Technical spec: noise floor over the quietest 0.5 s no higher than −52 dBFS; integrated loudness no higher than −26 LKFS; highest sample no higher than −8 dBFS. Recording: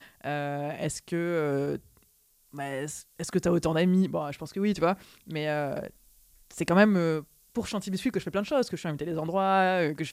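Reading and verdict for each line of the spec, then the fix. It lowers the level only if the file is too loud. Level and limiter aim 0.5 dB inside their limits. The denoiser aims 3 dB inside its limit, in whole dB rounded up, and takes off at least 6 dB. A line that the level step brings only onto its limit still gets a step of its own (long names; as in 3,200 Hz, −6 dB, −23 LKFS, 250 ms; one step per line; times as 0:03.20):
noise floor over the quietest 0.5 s −65 dBFS: in spec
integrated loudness −28.5 LKFS: in spec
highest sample −6.0 dBFS: out of spec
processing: brickwall limiter −8.5 dBFS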